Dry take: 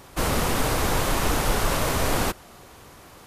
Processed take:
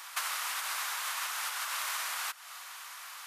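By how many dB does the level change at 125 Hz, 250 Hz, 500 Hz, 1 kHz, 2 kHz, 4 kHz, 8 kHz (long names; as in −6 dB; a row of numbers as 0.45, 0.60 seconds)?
below −40 dB, below −40 dB, −29.0 dB, −10.5 dB, −6.0 dB, −6.0 dB, −6.0 dB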